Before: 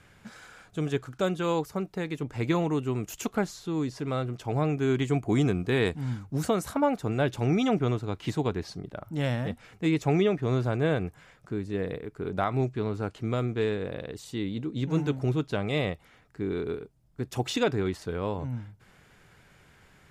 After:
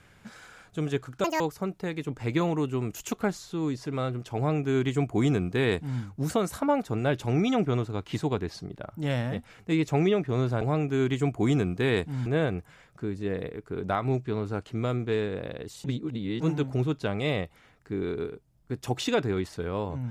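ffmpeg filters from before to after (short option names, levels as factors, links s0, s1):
-filter_complex "[0:a]asplit=7[s0][s1][s2][s3][s4][s5][s6];[s0]atrim=end=1.244[s7];[s1]atrim=start=1.24:end=1.54,asetpts=PTS-STARTPTS,asetrate=81585,aresample=44100,atrim=end_sample=7151,asetpts=PTS-STARTPTS[s8];[s2]atrim=start=1.536:end=10.752[s9];[s3]atrim=start=4.498:end=6.152[s10];[s4]atrim=start=10.748:end=14.332[s11];[s5]atrim=start=14.328:end=14.892,asetpts=PTS-STARTPTS,areverse[s12];[s6]atrim=start=14.888[s13];[s7][s8]acrossfade=d=0.004:c1=hsin:c2=hsin[s14];[s14][s9]acrossfade=d=0.004:c1=hsin:c2=hsin[s15];[s15][s10]acrossfade=d=0.004:c1=hsin:c2=hsin[s16];[s16][s11]acrossfade=d=0.004:c1=hsin:c2=hsin[s17];[s17][s12]acrossfade=d=0.004:c1=hsin:c2=hsin[s18];[s18][s13]acrossfade=d=0.004:c1=hsin:c2=hsin"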